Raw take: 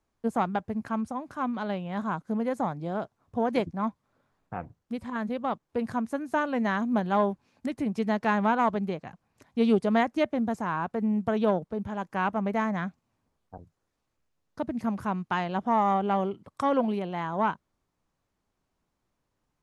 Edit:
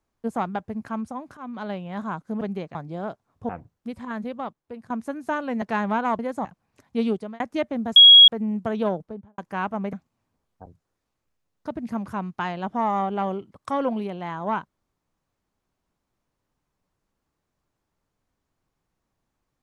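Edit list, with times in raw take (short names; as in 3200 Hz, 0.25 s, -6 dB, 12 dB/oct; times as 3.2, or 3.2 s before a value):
1.37–1.64 fade in, from -14 dB
2.41–2.67 swap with 8.73–9.07
3.41–4.54 cut
5.29–5.95 fade out, to -17 dB
6.67–8.16 cut
9.64–10.02 fade out
10.58–10.9 bleep 3310 Hz -6 dBFS
11.58–12 studio fade out
12.55–12.85 cut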